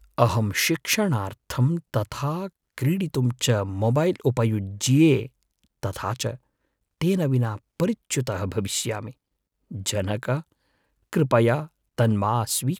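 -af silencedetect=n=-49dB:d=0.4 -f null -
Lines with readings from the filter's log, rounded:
silence_start: 6.37
silence_end: 7.01 | silence_duration: 0.65
silence_start: 9.13
silence_end: 9.71 | silence_duration: 0.58
silence_start: 10.42
silence_end: 11.13 | silence_duration: 0.70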